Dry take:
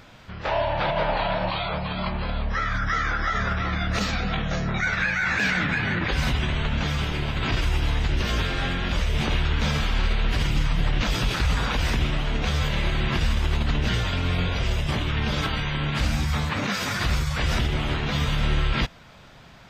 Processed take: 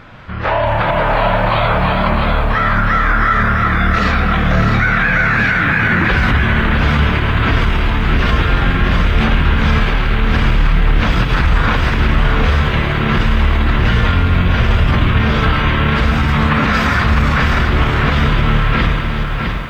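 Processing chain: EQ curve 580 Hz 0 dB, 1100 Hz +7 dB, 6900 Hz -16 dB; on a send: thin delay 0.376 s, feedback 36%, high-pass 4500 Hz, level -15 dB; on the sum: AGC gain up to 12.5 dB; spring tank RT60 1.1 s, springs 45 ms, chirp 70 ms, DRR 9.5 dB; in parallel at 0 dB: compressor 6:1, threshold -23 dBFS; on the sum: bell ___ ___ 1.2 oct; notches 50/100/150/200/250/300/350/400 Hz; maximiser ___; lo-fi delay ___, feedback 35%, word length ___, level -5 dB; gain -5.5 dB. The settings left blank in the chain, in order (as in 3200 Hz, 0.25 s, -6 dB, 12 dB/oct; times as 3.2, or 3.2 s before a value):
890 Hz, -7 dB, +10.5 dB, 0.657 s, 7-bit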